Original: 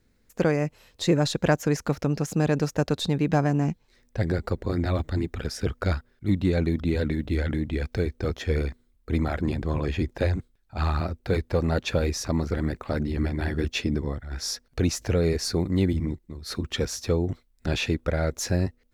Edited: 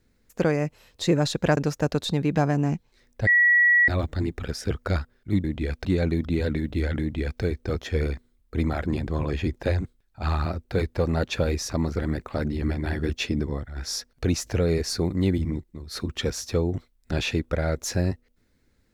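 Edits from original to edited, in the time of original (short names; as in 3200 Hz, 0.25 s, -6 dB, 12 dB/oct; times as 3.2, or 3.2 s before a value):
1.57–2.53 cut
4.23–4.84 bleep 1930 Hz -14.5 dBFS
7.56–7.97 copy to 6.4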